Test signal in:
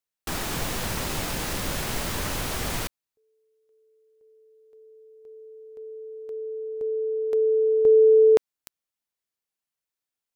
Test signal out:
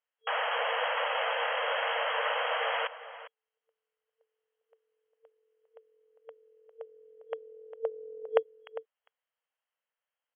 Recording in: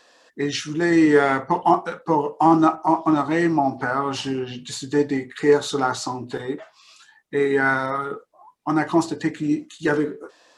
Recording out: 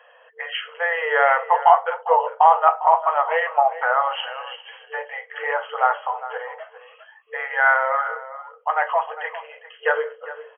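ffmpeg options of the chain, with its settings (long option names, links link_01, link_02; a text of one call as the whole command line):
ffmpeg -i in.wav -filter_complex "[0:a]equalizer=frequency=2400:width_type=o:width=0.22:gain=-5.5,afftfilt=real='re*between(b*sr/4096,450,3300)':imag='im*between(b*sr/4096,450,3300)':win_size=4096:overlap=0.75,asplit=2[link_01][link_02];[link_02]adelay=402.3,volume=-14dB,highshelf=frequency=4000:gain=-9.05[link_03];[link_01][link_03]amix=inputs=2:normalize=0,volume=4.5dB" out.wav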